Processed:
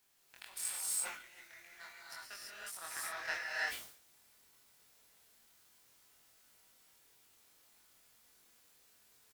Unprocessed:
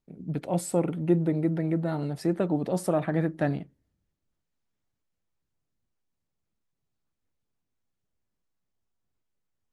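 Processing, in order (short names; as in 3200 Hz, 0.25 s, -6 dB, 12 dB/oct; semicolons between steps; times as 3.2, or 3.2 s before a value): HPF 1300 Hz 24 dB/oct; power-law curve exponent 2; added noise white -79 dBFS; doubler 24 ms -2.5 dB; non-linear reverb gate 0.38 s rising, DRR -5.5 dB; speed mistake 24 fps film run at 25 fps; sustainer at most 93 dB/s; gain +3.5 dB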